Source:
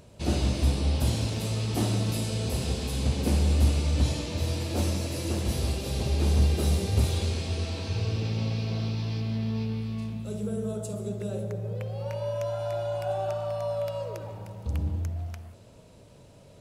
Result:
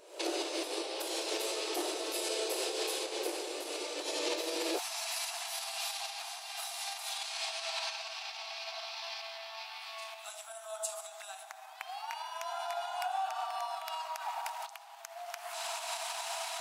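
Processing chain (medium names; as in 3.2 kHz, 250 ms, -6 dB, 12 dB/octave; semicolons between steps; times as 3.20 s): recorder AGC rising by 64 dB/s; peak limiter -18 dBFS, peak gain reduction 6.5 dB; brick-wall FIR high-pass 310 Hz, from 4.77 s 650 Hz; trim -1.5 dB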